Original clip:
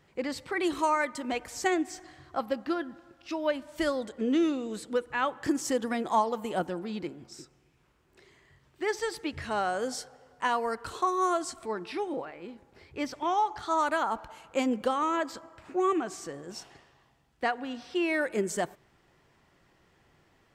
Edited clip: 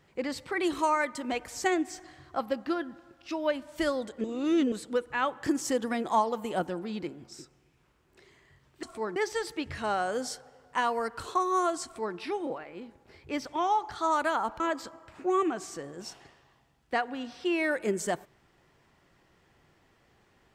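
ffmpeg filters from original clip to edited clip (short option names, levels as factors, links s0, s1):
-filter_complex "[0:a]asplit=6[s0][s1][s2][s3][s4][s5];[s0]atrim=end=4.242[s6];[s1]atrim=start=4.238:end=4.722,asetpts=PTS-STARTPTS,areverse[s7];[s2]atrim=start=4.718:end=8.832[s8];[s3]atrim=start=11.508:end=11.842[s9];[s4]atrim=start=8.828:end=14.272[s10];[s5]atrim=start=15.098[s11];[s6][s7]acrossfade=d=0.004:c1=hsin:c2=hsin[s12];[s12][s8]acrossfade=d=0.004:c1=hsin:c2=hsin[s13];[s13][s9]acrossfade=d=0.004:c1=hsin:c2=hsin[s14];[s14][s10]acrossfade=d=0.004:c1=hsin:c2=hsin[s15];[s15][s11]acrossfade=d=0.004:c1=hsin:c2=hsin"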